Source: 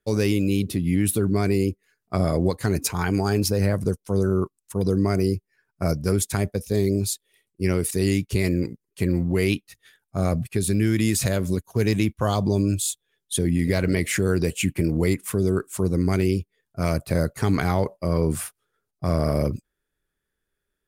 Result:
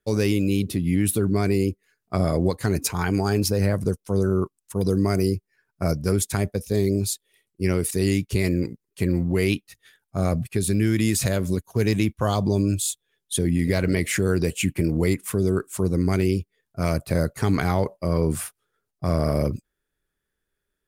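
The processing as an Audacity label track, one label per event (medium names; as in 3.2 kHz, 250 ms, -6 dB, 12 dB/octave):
4.760000	5.300000	treble shelf 6.4 kHz +6.5 dB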